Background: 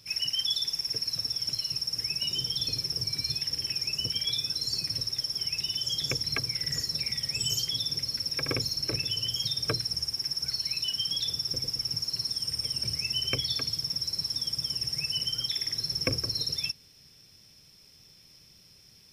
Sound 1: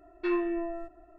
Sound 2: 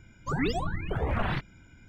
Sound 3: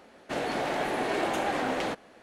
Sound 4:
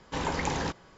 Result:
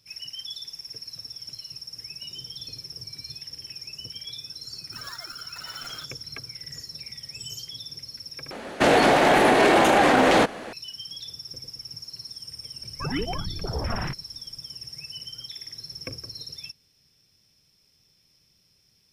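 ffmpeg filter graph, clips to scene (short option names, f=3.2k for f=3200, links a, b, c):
-filter_complex "[2:a]asplit=2[a][b];[0:a]volume=-8dB[c];[a]aeval=exprs='val(0)*sgn(sin(2*PI*1400*n/s))':c=same[d];[3:a]alimiter=level_in=25dB:limit=-1dB:release=50:level=0:latency=1[e];[b]afwtdn=0.0158[f];[c]asplit=2[g][h];[g]atrim=end=8.514[i];[e]atrim=end=2.22,asetpts=PTS-STARTPTS,volume=-8dB[j];[h]atrim=start=10.726[k];[d]atrim=end=1.88,asetpts=PTS-STARTPTS,volume=-15dB,afade=t=in:d=0.004:c=hsin,afade=t=out:st=1.876:d=0.004:c=hsin,adelay=205065S[l];[f]atrim=end=1.88,asetpts=PTS-STARTPTS,volume=-0.5dB,afade=t=in:d=0.004:c=hsin,afade=t=out:st=1.876:d=0.004:c=hsin,adelay=12730[m];[i][j]acrossfade=d=0.004:c1=hsin:c2=hsin[n];[n][k]acrossfade=d=0.004:c1=hsin:c2=hsin[o];[o][l][m]amix=inputs=3:normalize=0"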